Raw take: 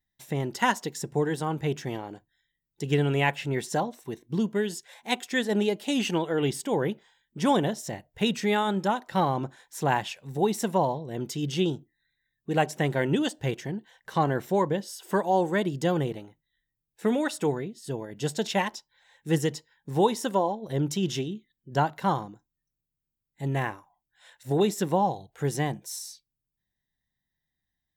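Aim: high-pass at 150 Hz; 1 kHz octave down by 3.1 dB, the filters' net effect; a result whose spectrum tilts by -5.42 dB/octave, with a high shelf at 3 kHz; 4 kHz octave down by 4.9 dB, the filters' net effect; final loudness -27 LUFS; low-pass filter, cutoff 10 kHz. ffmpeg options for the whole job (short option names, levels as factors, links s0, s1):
-af "highpass=150,lowpass=10000,equalizer=f=1000:t=o:g=-3.5,highshelf=f=3000:g=-4.5,equalizer=f=4000:t=o:g=-3,volume=1.41"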